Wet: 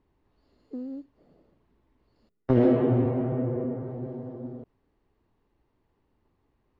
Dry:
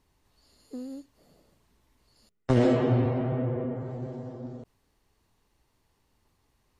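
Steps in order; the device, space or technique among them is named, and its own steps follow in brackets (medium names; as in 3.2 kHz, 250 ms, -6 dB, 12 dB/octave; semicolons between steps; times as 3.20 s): phone in a pocket (low-pass 3.6 kHz 12 dB/octave; peaking EQ 330 Hz +5.5 dB 1.2 oct; treble shelf 2.4 kHz -9.5 dB); trim -1.5 dB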